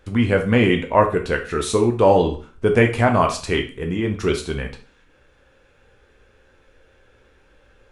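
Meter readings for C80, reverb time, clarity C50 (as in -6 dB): 15.5 dB, 0.40 s, 10.0 dB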